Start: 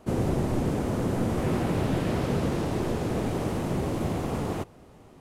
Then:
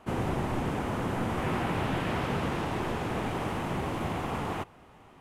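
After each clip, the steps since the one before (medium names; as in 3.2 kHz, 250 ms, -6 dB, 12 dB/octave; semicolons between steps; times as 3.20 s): high-order bell 1.6 kHz +8.5 dB 2.4 oct; trim -5 dB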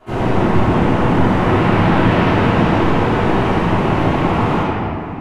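reverberation RT60 2.4 s, pre-delay 3 ms, DRR -16.5 dB; trim -1.5 dB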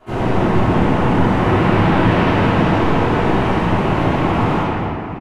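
delay 220 ms -11.5 dB; trim -1 dB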